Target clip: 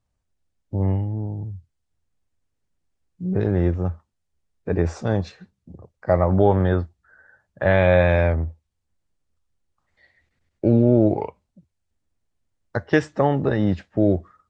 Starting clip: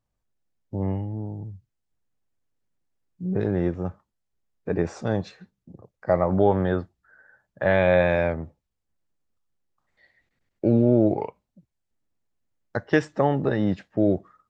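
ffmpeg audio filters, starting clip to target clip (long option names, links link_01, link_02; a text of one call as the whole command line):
ffmpeg -i in.wav -af "equalizer=frequency=81:width_type=o:width=0.47:gain=11.5,volume=2dB" -ar 22050 -c:a libvorbis -b:a 48k out.ogg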